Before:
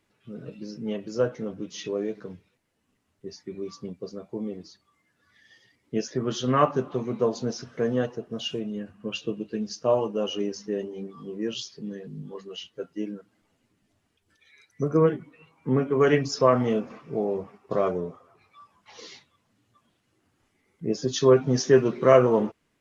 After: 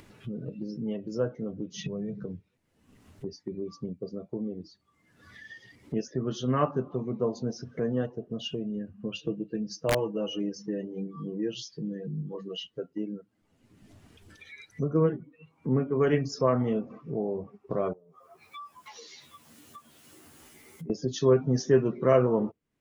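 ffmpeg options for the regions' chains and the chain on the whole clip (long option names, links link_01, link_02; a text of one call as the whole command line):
ffmpeg -i in.wav -filter_complex "[0:a]asettb=1/sr,asplit=3[link_01][link_02][link_03];[link_01]atrim=end=1.764[link_04];[link_02]atrim=start=1.76:end=2.24,asetpts=PTS-STARTPTS,afade=type=in:duration=0.004:curve=qsin,afade=type=out:start_time=0.476:duration=0.004:curve=qsin,lowshelf=frequency=220:width_type=q:width=3:gain=9,acompressor=threshold=-30dB:ratio=3:attack=3.2:release=140:knee=1:detection=peak[link_05];[link_03]atrim=start=2.236[link_06];[link_04][link_05]acrossfade=duration=0.004:curve1=hsin:curve2=qsin[link_07];[link_07][link_06]acrossfade=duration=0.004:curve1=qsin:curve2=hsin,asettb=1/sr,asplit=3[link_08][link_09][link_10];[link_08]atrim=end=9.184[link_11];[link_09]atrim=start=9.18:end=12.66,asetpts=PTS-STARTPTS,afade=type=in:duration=0.004:curve=qsin,afade=type=out:start_time=3.476:duration=0.004:curve=qsin,equalizer=frequency=1700:width_type=o:width=0.26:gain=3,aecho=1:1:6.2:0.55,atrim=end_sample=153468,aeval=exprs='(mod(3.76*val(0)+1,2)-1)/3.76':channel_layout=same[link_12];[link_10]atrim=start=12.656[link_13];[link_11][link_12]acrossfade=duration=0.004:curve1=hsin:curve2=qsin[link_14];[link_14][link_13]acrossfade=duration=0.004:curve1=qsin:curve2=hsin,asettb=1/sr,asplit=3[link_15][link_16][link_17];[link_15]atrim=end=17.934[link_18];[link_16]atrim=start=17.93:end=20.9,asetpts=PTS-STARTPTS,afade=type=in:duration=0.004:curve=qsin,afade=type=out:start_time=2.966:duration=0.004:curve=qsin,aemphasis=mode=production:type=bsi,acompressor=threshold=-51dB:ratio=12:attack=3.2:release=140:knee=1:detection=peak,asplit=2[link_19][link_20];[link_20]adelay=13,volume=-2dB[link_21];[link_19][link_21]amix=inputs=2:normalize=0,atrim=end_sample=130977[link_22];[link_17]atrim=start=20.896[link_23];[link_18][link_22]acrossfade=duration=0.004:curve1=hsin:curve2=qsin[link_24];[link_24][link_23]acrossfade=duration=0.004:curve1=qsin:curve2=hsin,afftdn=noise_reduction=13:noise_floor=-44,lowshelf=frequency=360:gain=7.5,acompressor=mode=upward:threshold=-21dB:ratio=2.5,volume=-7.5dB" out.wav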